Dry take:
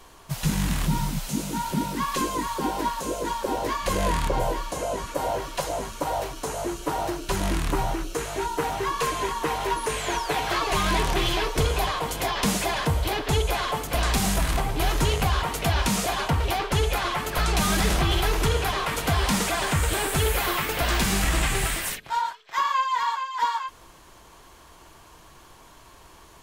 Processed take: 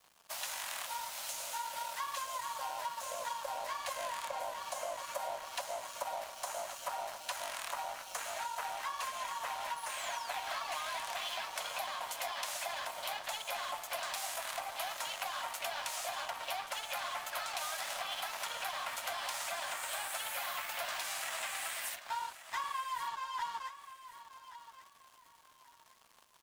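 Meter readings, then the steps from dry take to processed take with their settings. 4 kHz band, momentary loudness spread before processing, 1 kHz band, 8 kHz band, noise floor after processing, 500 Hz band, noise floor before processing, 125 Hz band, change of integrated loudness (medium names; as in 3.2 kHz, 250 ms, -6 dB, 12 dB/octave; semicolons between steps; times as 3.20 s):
-11.0 dB, 6 LU, -11.5 dB, -10.5 dB, -62 dBFS, -16.0 dB, -51 dBFS, under -40 dB, -13.0 dB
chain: steep high-pass 550 Hz 96 dB/octave; compression 6:1, threshold -35 dBFS, peak gain reduction 15 dB; crossover distortion -48.5 dBFS; on a send: feedback delay 1130 ms, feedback 27%, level -14 dB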